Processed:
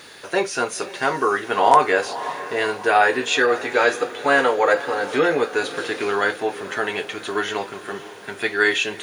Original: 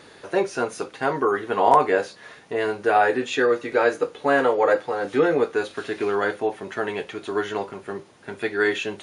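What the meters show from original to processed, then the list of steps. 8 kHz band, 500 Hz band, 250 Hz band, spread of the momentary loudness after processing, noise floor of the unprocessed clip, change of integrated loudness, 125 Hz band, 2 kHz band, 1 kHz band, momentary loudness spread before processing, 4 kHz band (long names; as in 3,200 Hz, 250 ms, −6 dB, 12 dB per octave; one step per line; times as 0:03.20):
can't be measured, +0.5 dB, −0.5 dB, 10 LU, −49 dBFS, +2.5 dB, −1.0 dB, +6.0 dB, +3.0 dB, 12 LU, +8.5 dB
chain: bit-depth reduction 12 bits, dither triangular
tilt shelving filter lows −5.5 dB, about 1,200 Hz
feedback delay with all-pass diffusion 538 ms, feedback 49%, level −14 dB
level +4 dB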